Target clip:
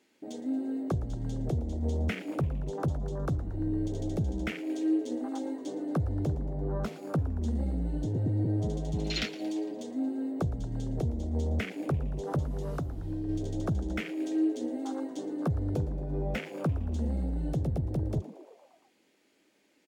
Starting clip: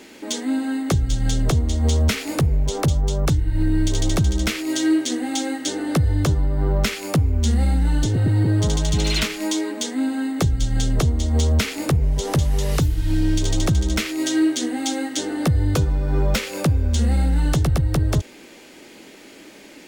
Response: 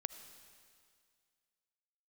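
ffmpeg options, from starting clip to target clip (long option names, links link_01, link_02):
-filter_complex "[0:a]highpass=frequency=95:poles=1,afwtdn=0.0562,asettb=1/sr,asplit=3[link_01][link_02][link_03];[link_01]atrim=end=12.684[link_04];[link_02]atrim=start=12.68:end=13.29,asetpts=PTS-STARTPTS,afade=type=in:duration=0.004:curve=qsin,afade=type=out:start_time=0.606:duration=0.004:curve=qsin,acompressor=threshold=-22dB:ratio=6[link_05];[link_03]atrim=start=13.286[link_06];[link_04][link_05]acrossfade=duration=0.004:curve1=hsin:curve2=qsin[link_07];[link_07][link_06]acrossfade=duration=0.004:curve1=qsin:curve2=hsin,asplit=2[link_08][link_09];[link_09]asplit=6[link_10][link_11][link_12][link_13][link_14][link_15];[link_10]adelay=114,afreqshift=110,volume=-17dB[link_16];[link_11]adelay=228,afreqshift=220,volume=-21.6dB[link_17];[link_12]adelay=342,afreqshift=330,volume=-26.2dB[link_18];[link_13]adelay=456,afreqshift=440,volume=-30.7dB[link_19];[link_14]adelay=570,afreqshift=550,volume=-35.3dB[link_20];[link_15]adelay=684,afreqshift=660,volume=-39.9dB[link_21];[link_16][link_17][link_18][link_19][link_20][link_21]amix=inputs=6:normalize=0[link_22];[link_08][link_22]amix=inputs=2:normalize=0,volume=-8.5dB"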